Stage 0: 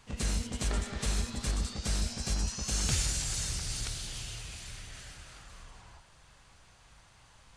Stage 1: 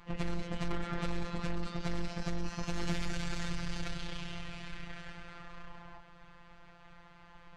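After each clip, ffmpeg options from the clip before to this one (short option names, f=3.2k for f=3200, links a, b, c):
-af "lowpass=2.2k,aeval=exprs='(tanh(70.8*val(0)+0.6)-tanh(0.6))/70.8':c=same,afftfilt=real='hypot(re,im)*cos(PI*b)':imag='0':win_size=1024:overlap=0.75,volume=11.5dB"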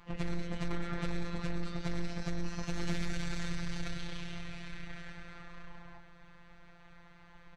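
-filter_complex "[0:a]asplit=2[a][b];[b]adelay=110.8,volume=-9dB,highshelf=f=4k:g=-2.49[c];[a][c]amix=inputs=2:normalize=0,volume=-1.5dB"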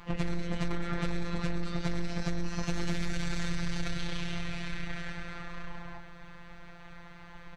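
-af "acompressor=threshold=-34dB:ratio=3,volume=8dB"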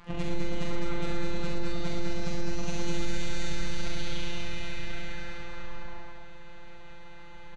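-filter_complex "[0:a]asplit=2[a][b];[b]adelay=44,volume=-3.5dB[c];[a][c]amix=inputs=2:normalize=0,asplit=2[d][e];[e]aecho=0:1:69.97|207:0.631|0.708[f];[d][f]amix=inputs=2:normalize=0,aresample=22050,aresample=44100,volume=-2.5dB"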